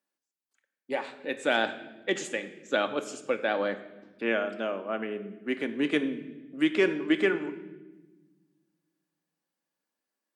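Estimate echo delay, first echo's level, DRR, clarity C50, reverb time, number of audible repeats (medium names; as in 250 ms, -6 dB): no echo, no echo, 8.0 dB, 12.5 dB, 1.2 s, no echo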